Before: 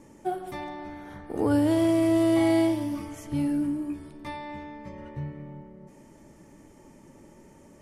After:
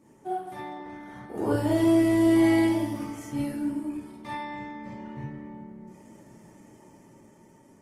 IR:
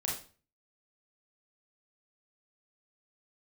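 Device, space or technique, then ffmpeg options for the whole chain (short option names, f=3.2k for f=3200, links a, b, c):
far-field microphone of a smart speaker: -filter_complex "[1:a]atrim=start_sample=2205[a];[0:a][a]afir=irnorm=-1:irlink=0,highpass=110,dynaudnorm=f=210:g=11:m=4dB,volume=-6.5dB" -ar 48000 -c:a libopus -b:a 20k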